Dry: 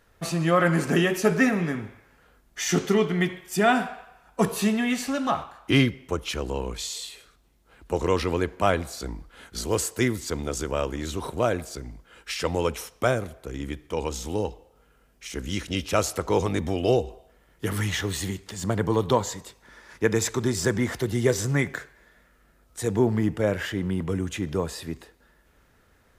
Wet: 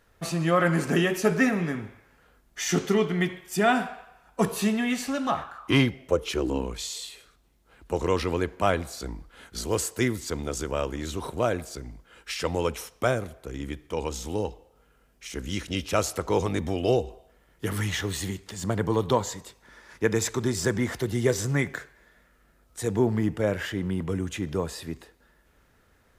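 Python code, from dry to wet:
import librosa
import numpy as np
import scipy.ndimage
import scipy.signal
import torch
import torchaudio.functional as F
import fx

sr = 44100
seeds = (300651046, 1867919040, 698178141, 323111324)

y = fx.peak_eq(x, sr, hz=fx.line((5.36, 1900.0), (6.65, 230.0)), db=14.5, octaves=0.35, at=(5.36, 6.65), fade=0.02)
y = y * 10.0 ** (-1.5 / 20.0)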